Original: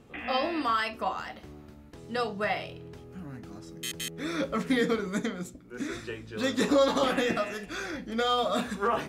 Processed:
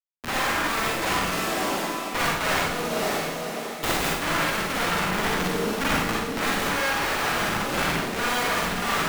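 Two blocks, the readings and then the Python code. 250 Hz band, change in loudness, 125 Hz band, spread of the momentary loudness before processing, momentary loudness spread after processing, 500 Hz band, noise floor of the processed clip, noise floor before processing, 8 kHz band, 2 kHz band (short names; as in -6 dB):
+1.5 dB, +5.0 dB, +8.0 dB, 18 LU, 3 LU, +1.0 dB, -32 dBFS, -50 dBFS, +11.5 dB, +10.0 dB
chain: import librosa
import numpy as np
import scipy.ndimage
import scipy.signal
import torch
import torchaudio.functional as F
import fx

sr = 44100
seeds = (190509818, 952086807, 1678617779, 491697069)

y = fx.tracing_dist(x, sr, depth_ms=0.27)
y = fx.high_shelf(y, sr, hz=10000.0, db=9.5)
y = fx.schmitt(y, sr, flips_db=-30.0)
y = fx.echo_diffused(y, sr, ms=548, feedback_pct=42, wet_db=-14.0)
y = 10.0 ** (-35.5 / 20.0) * np.tanh(y / 10.0 ** (-35.5 / 20.0))
y = scipy.signal.sosfilt(scipy.signal.butter(4, 200.0, 'highpass', fs=sr, output='sos'), y)
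y = fx.cheby_harmonics(y, sr, harmonics=(3, 6, 7), levels_db=(-15, -13, -10), full_scale_db=-26.0)
y = fx.rider(y, sr, range_db=5, speed_s=0.5)
y = fx.rev_schroeder(y, sr, rt60_s=0.83, comb_ms=38, drr_db=-4.0)
y = y * 10.0 ** (8.5 / 20.0)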